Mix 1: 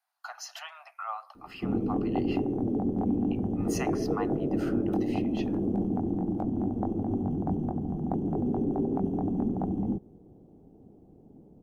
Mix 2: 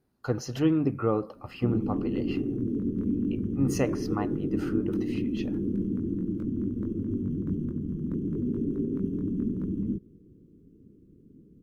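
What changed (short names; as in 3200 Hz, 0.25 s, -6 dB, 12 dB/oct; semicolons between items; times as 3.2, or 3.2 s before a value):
speech: remove steep high-pass 660 Hz 96 dB/oct; background: add Butterworth band-stop 750 Hz, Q 0.71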